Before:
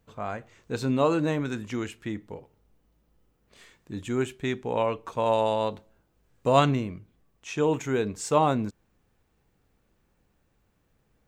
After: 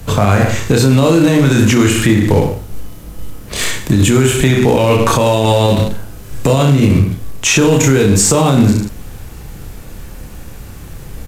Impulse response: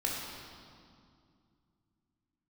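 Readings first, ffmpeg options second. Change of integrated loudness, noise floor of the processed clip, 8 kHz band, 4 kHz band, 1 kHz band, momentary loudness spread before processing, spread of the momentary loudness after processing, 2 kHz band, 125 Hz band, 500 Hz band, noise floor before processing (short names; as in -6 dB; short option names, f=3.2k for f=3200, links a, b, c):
+15.5 dB, -32 dBFS, +26.0 dB, +19.5 dB, +9.5 dB, 16 LU, 9 LU, +18.5 dB, +21.5 dB, +13.0 dB, -70 dBFS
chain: -filter_complex "[0:a]acrossover=split=150|520|1700[a][b][c][d];[a]acompressor=threshold=-40dB:ratio=4[e];[b]acompressor=threshold=-29dB:ratio=4[f];[c]acompressor=threshold=-39dB:ratio=4[g];[d]acompressor=threshold=-41dB:ratio=4[h];[e][f][g][h]amix=inputs=4:normalize=0,asplit=2[i][j];[j]aecho=0:1:30|63|99.3|139.2|183.2:0.631|0.398|0.251|0.158|0.1[k];[i][k]amix=inputs=2:normalize=0,crystalizer=i=1.5:c=0,asplit=2[l][m];[m]acrusher=bits=2:mode=log:mix=0:aa=0.000001,volume=-5dB[n];[l][n]amix=inputs=2:normalize=0,equalizer=f=110:t=o:w=1.6:g=4,acompressor=threshold=-30dB:ratio=6,lowshelf=f=68:g=10.5,aresample=32000,aresample=44100,alimiter=level_in=27.5dB:limit=-1dB:release=50:level=0:latency=1,volume=-1dB"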